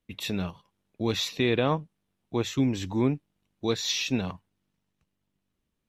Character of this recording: noise floor -80 dBFS; spectral tilt -5.0 dB/octave

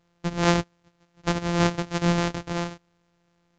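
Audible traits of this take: a buzz of ramps at a fixed pitch in blocks of 256 samples; µ-law

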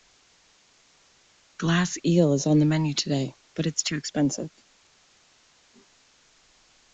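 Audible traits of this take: phasing stages 2, 0.97 Hz, lowest notch 470–1700 Hz; a quantiser's noise floor 10-bit, dither triangular; Vorbis

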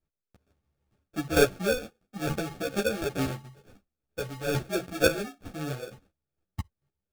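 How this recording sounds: chopped level 2.2 Hz, depth 65%, duty 15%; aliases and images of a low sample rate 1 kHz, jitter 0%; a shimmering, thickened sound

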